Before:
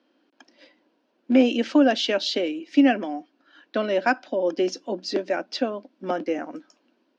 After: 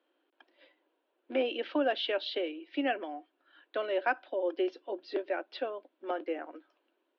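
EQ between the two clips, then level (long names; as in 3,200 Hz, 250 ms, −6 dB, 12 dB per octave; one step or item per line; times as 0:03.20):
elliptic band-pass filter 350–3,600 Hz, stop band 40 dB
−7.0 dB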